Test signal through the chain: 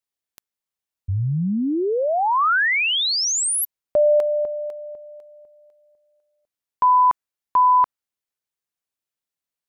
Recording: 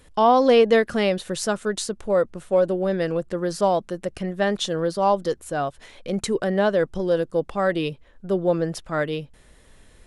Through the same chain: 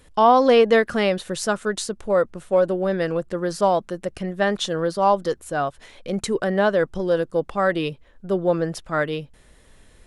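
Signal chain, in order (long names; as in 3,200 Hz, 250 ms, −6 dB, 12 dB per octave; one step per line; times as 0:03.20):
dynamic equaliser 1,300 Hz, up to +4 dB, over −34 dBFS, Q 1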